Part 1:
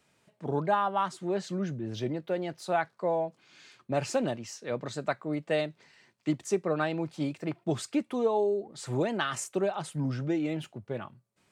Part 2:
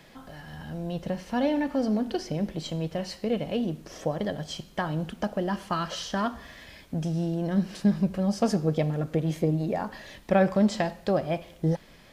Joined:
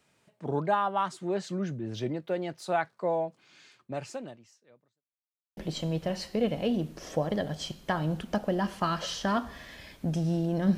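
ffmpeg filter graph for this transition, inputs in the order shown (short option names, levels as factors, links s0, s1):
-filter_complex "[0:a]apad=whole_dur=10.77,atrim=end=10.77,asplit=2[s0][s1];[s0]atrim=end=5.06,asetpts=PTS-STARTPTS,afade=t=out:st=3.47:d=1.59:c=qua[s2];[s1]atrim=start=5.06:end=5.57,asetpts=PTS-STARTPTS,volume=0[s3];[1:a]atrim=start=2.46:end=7.66,asetpts=PTS-STARTPTS,afade=t=in:d=0.004:c=hsin[s4];[s2][s3][s4]concat=n=3:v=0:a=1"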